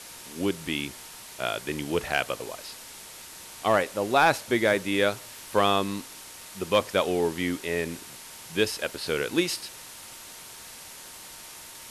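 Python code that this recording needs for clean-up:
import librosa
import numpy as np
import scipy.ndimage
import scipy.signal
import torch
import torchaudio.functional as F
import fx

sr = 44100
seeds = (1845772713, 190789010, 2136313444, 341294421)

y = fx.fix_declip(x, sr, threshold_db=-11.0)
y = fx.notch(y, sr, hz=920.0, q=30.0)
y = fx.noise_reduce(y, sr, print_start_s=2.83, print_end_s=3.33, reduce_db=27.0)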